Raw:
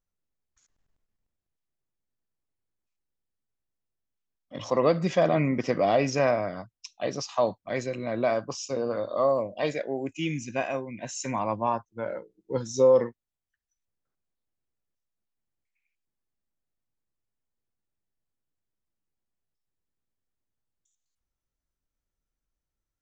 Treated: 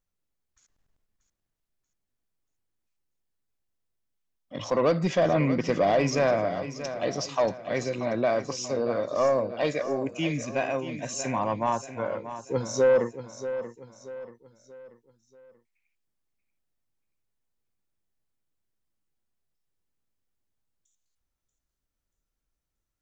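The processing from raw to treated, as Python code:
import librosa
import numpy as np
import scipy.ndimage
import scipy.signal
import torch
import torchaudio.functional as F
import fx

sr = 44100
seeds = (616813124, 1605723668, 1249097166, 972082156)

y = 10.0 ** (-17.0 / 20.0) * np.tanh(x / 10.0 ** (-17.0 / 20.0))
y = fx.echo_feedback(y, sr, ms=634, feedback_pct=41, wet_db=-11.5)
y = F.gain(torch.from_numpy(y), 2.0).numpy()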